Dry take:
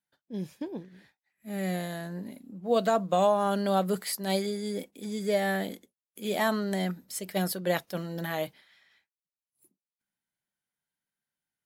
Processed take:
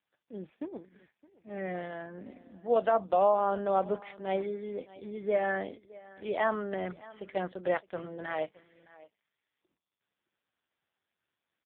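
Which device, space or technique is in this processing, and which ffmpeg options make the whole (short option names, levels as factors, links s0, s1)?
satellite phone: -af "highpass=350,lowpass=3100,lowshelf=f=350:g=2.5,aecho=1:1:616:0.0944" -ar 8000 -c:a libopencore_amrnb -b:a 5150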